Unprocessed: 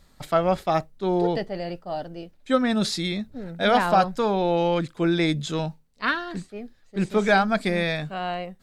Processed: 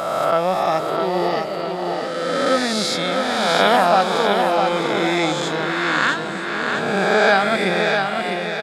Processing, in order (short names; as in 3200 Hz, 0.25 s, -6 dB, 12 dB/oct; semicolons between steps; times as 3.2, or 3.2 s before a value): spectral swells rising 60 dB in 2.26 s; HPF 280 Hz 6 dB/oct; on a send: feedback echo 0.655 s, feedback 45%, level -5 dB; on the sum: gain +1 dB